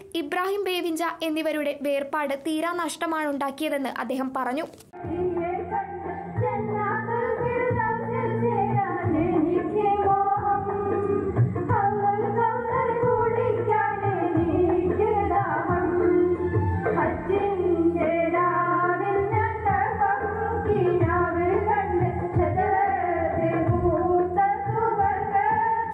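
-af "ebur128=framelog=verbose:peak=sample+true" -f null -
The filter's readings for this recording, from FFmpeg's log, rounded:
Integrated loudness:
  I:         -24.4 LUFS
  Threshold: -34.4 LUFS
Loudness range:
  LRA:         4.7 LU
  Threshold: -44.4 LUFS
  LRA low:   -28.0 LUFS
  LRA high:  -23.2 LUFS
Sample peak:
  Peak:      -12.3 dBFS
True peak:
  Peak:      -12.3 dBFS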